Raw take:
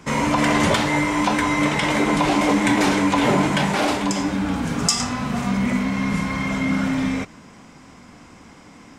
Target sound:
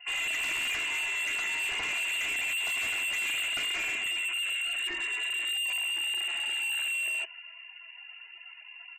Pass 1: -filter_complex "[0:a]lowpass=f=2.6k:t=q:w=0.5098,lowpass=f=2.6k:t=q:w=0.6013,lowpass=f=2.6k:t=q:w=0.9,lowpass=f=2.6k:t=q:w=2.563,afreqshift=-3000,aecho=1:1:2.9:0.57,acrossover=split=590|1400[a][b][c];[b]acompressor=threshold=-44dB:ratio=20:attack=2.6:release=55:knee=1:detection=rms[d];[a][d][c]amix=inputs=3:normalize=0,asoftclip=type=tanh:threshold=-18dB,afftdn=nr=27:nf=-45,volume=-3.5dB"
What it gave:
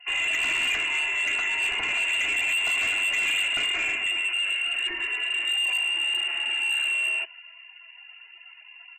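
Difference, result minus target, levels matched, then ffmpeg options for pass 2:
soft clip: distortion -5 dB
-filter_complex "[0:a]lowpass=f=2.6k:t=q:w=0.5098,lowpass=f=2.6k:t=q:w=0.6013,lowpass=f=2.6k:t=q:w=0.9,lowpass=f=2.6k:t=q:w=2.563,afreqshift=-3000,aecho=1:1:2.9:0.57,acrossover=split=590|1400[a][b][c];[b]acompressor=threshold=-44dB:ratio=20:attack=2.6:release=55:knee=1:detection=rms[d];[a][d][c]amix=inputs=3:normalize=0,asoftclip=type=tanh:threshold=-26dB,afftdn=nr=27:nf=-45,volume=-3.5dB"

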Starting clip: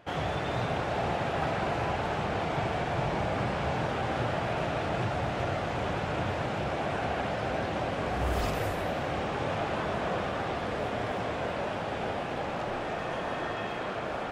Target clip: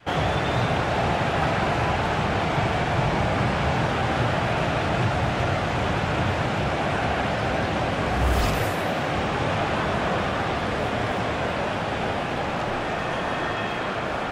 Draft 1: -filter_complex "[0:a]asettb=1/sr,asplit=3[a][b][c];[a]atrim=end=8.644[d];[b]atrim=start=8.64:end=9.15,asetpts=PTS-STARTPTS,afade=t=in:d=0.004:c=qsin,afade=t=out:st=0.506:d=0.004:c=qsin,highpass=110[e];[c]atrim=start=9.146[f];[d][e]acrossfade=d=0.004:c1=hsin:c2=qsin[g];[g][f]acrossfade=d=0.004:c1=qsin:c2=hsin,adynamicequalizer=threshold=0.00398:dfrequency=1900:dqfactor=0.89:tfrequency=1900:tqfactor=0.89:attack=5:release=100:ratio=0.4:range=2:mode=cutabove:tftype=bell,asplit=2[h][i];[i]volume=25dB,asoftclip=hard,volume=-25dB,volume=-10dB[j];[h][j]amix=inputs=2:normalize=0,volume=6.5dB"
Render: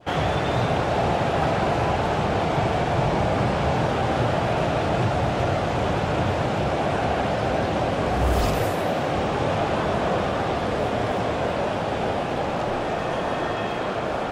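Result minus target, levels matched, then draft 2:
2000 Hz band -4.0 dB
-filter_complex "[0:a]asettb=1/sr,asplit=3[a][b][c];[a]atrim=end=8.644[d];[b]atrim=start=8.64:end=9.15,asetpts=PTS-STARTPTS,afade=t=in:d=0.004:c=qsin,afade=t=out:st=0.506:d=0.004:c=qsin,highpass=110[e];[c]atrim=start=9.146[f];[d][e]acrossfade=d=0.004:c1=hsin:c2=qsin[g];[g][f]acrossfade=d=0.004:c1=qsin:c2=hsin,adynamicequalizer=threshold=0.00398:dfrequency=520:dqfactor=0.89:tfrequency=520:tqfactor=0.89:attack=5:release=100:ratio=0.4:range=2:mode=cutabove:tftype=bell,asplit=2[h][i];[i]volume=25dB,asoftclip=hard,volume=-25dB,volume=-10dB[j];[h][j]amix=inputs=2:normalize=0,volume=6.5dB"

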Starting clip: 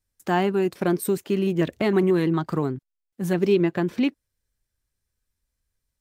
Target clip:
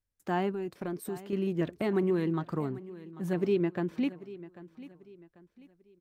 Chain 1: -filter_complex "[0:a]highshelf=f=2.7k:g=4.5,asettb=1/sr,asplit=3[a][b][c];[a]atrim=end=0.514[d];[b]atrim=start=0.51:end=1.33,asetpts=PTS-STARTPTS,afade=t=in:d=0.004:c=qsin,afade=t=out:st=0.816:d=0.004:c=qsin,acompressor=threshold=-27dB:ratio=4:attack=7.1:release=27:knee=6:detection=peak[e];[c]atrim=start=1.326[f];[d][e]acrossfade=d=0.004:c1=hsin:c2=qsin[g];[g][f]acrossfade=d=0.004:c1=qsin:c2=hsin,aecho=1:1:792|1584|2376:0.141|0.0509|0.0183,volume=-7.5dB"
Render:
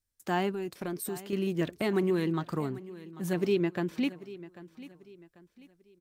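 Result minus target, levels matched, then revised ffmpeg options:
4000 Hz band +6.0 dB
-filter_complex "[0:a]highshelf=f=2.7k:g=-6.5,asettb=1/sr,asplit=3[a][b][c];[a]atrim=end=0.514[d];[b]atrim=start=0.51:end=1.33,asetpts=PTS-STARTPTS,afade=t=in:d=0.004:c=qsin,afade=t=out:st=0.816:d=0.004:c=qsin,acompressor=threshold=-27dB:ratio=4:attack=7.1:release=27:knee=6:detection=peak[e];[c]atrim=start=1.326[f];[d][e]acrossfade=d=0.004:c1=hsin:c2=qsin[g];[g][f]acrossfade=d=0.004:c1=qsin:c2=hsin,aecho=1:1:792|1584|2376:0.141|0.0509|0.0183,volume=-7.5dB"

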